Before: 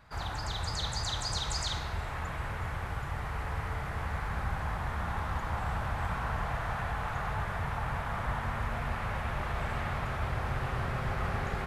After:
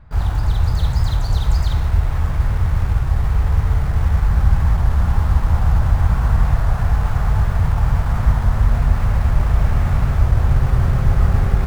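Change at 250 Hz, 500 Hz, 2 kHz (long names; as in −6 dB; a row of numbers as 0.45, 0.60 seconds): +14.0, +7.5, +3.5 decibels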